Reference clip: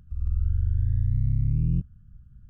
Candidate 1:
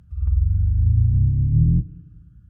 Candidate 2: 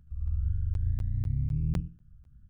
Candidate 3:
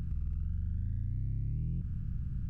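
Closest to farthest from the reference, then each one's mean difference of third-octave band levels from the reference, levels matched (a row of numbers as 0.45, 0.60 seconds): 1, 2, 3; 1.0, 2.5, 5.5 decibels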